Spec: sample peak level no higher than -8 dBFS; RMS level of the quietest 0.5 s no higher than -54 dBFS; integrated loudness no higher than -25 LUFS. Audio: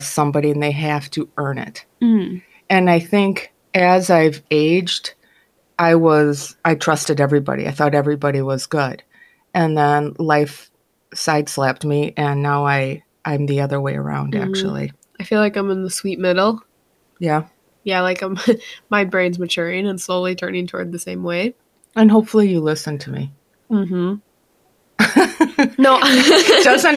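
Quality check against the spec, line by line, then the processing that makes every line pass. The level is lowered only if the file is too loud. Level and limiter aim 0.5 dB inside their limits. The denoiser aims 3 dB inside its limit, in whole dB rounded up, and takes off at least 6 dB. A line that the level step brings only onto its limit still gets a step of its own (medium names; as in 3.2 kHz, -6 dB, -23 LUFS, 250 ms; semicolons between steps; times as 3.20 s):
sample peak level -1.5 dBFS: fail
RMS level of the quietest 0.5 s -61 dBFS: pass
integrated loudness -17.0 LUFS: fail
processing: trim -8.5 dB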